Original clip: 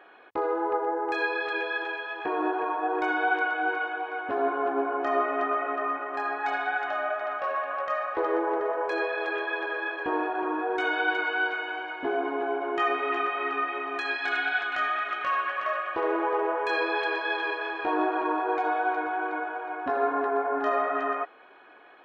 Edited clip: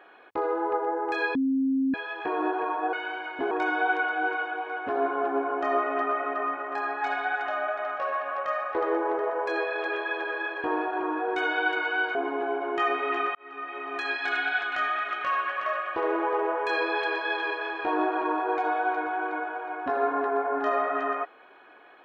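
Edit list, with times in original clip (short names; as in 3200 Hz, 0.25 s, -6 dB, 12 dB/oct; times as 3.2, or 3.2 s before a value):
1.35–1.94 bleep 267 Hz -21.5 dBFS
11.57–12.15 move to 2.93
13.35–14.04 fade in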